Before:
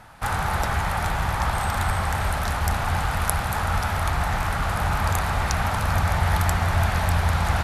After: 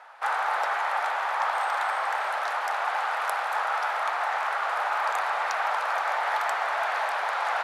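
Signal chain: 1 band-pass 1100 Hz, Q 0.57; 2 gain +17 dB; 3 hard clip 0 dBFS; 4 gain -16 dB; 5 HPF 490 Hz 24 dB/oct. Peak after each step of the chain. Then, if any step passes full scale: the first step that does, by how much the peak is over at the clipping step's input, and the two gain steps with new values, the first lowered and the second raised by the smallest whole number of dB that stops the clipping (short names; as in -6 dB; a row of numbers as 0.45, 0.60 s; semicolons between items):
-11.5, +5.5, 0.0, -16.0, -13.5 dBFS; step 2, 5.5 dB; step 2 +11 dB, step 4 -10 dB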